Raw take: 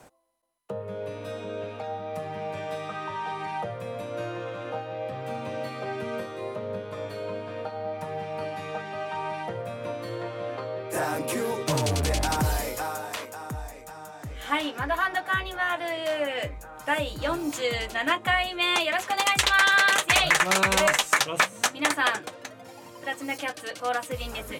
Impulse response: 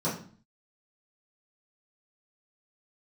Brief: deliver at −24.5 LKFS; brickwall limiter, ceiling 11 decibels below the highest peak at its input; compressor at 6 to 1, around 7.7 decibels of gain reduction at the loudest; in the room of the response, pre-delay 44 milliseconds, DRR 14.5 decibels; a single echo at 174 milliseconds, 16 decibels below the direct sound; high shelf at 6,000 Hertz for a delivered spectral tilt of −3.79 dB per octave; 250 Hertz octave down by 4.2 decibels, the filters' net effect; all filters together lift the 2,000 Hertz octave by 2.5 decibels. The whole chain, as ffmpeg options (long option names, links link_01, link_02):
-filter_complex "[0:a]equalizer=frequency=250:width_type=o:gain=-6,equalizer=frequency=2000:width_type=o:gain=4,highshelf=frequency=6000:gain=-7,acompressor=threshold=-23dB:ratio=6,alimiter=limit=-20dB:level=0:latency=1,aecho=1:1:174:0.158,asplit=2[link_01][link_02];[1:a]atrim=start_sample=2205,adelay=44[link_03];[link_02][link_03]afir=irnorm=-1:irlink=0,volume=-23.5dB[link_04];[link_01][link_04]amix=inputs=2:normalize=0,volume=7dB"